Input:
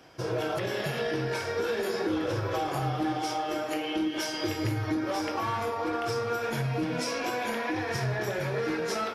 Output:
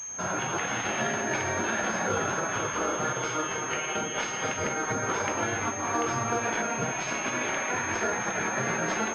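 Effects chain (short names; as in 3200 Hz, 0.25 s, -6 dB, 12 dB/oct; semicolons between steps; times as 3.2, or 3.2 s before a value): HPF 95 Hz; small resonant body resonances 1400 Hz, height 11 dB; spectral gate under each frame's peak -10 dB weak; pulse-width modulation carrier 6400 Hz; gain +7.5 dB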